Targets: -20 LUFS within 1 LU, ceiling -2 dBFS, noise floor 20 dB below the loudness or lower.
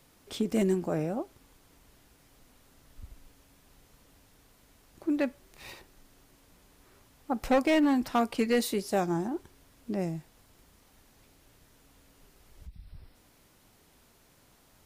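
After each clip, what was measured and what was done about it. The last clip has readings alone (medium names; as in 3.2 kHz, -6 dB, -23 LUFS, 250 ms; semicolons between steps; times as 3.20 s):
clipped samples 0.4%; clipping level -19.0 dBFS; loudness -29.5 LUFS; peak level -19.0 dBFS; loudness target -20.0 LUFS
-> clip repair -19 dBFS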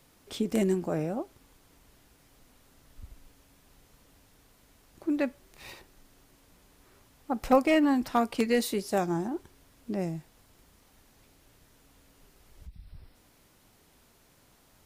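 clipped samples 0.0%; loudness -29.0 LUFS; peak level -10.0 dBFS; loudness target -20.0 LUFS
-> trim +9 dB; peak limiter -2 dBFS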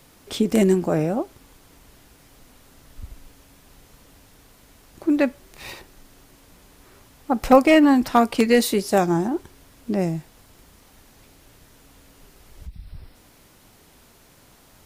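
loudness -20.0 LUFS; peak level -2.0 dBFS; noise floor -54 dBFS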